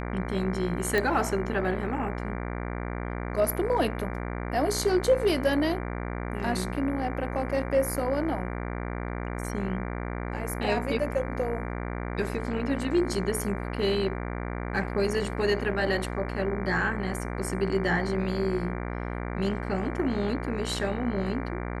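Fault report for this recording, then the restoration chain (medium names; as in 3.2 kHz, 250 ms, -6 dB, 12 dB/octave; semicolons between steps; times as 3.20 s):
buzz 60 Hz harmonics 39 -33 dBFS
0.98 s: pop -13 dBFS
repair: de-click; de-hum 60 Hz, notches 39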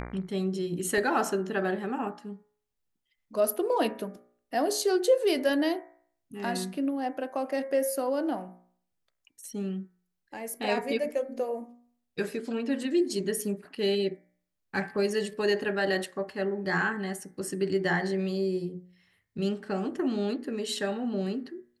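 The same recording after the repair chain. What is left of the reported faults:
nothing left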